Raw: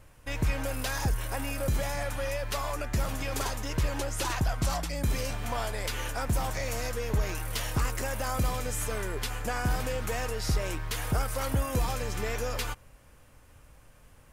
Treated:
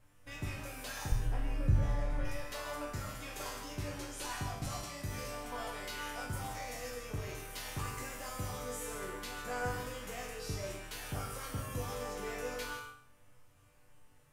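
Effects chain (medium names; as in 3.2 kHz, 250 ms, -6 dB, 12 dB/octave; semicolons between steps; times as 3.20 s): 1.12–2.25 s: RIAA curve playback; chord resonator G2 major, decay 0.53 s; gated-style reverb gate 180 ms rising, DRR 6.5 dB; trim +6.5 dB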